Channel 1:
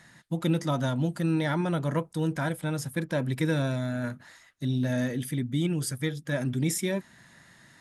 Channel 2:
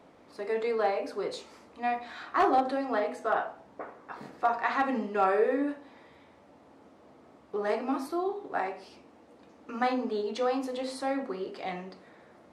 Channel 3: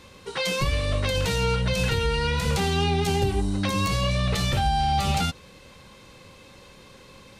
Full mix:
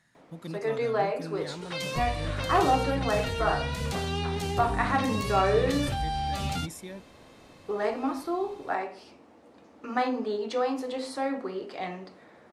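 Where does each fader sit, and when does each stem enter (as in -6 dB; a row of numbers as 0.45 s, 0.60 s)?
-13.0 dB, +1.0 dB, -7.5 dB; 0.00 s, 0.15 s, 1.35 s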